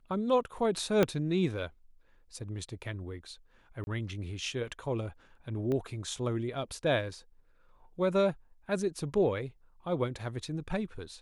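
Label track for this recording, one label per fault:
1.030000	1.030000	pop -12 dBFS
3.840000	3.870000	gap 31 ms
5.720000	5.720000	pop -23 dBFS

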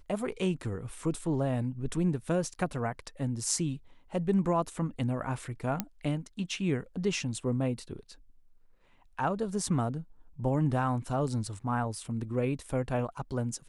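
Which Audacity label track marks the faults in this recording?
5.800000	5.800000	pop -14 dBFS

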